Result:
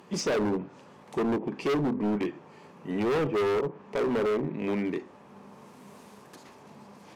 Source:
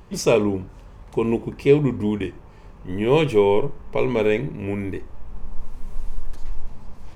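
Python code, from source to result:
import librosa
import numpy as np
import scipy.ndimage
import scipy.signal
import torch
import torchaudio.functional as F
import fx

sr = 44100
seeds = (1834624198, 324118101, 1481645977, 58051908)

y = scipy.signal.sosfilt(scipy.signal.butter(4, 170.0, 'highpass', fs=sr, output='sos'), x)
y = fx.env_lowpass_down(y, sr, base_hz=1000.0, full_db=-17.5)
y = np.clip(10.0 ** (24.0 / 20.0) * y, -1.0, 1.0) / 10.0 ** (24.0 / 20.0)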